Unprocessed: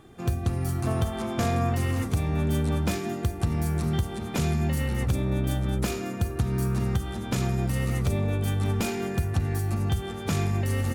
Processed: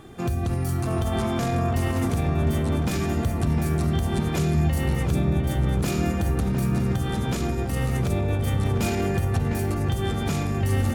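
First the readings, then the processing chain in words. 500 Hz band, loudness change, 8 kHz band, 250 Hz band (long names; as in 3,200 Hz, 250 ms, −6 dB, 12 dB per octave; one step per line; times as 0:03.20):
+3.5 dB, +3.0 dB, +1.5 dB, +3.5 dB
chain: brickwall limiter −24 dBFS, peak gain reduction 9 dB
on a send: feedback echo with a low-pass in the loop 706 ms, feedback 73%, low-pass 1,800 Hz, level −5.5 dB
on the sum: level +6.5 dB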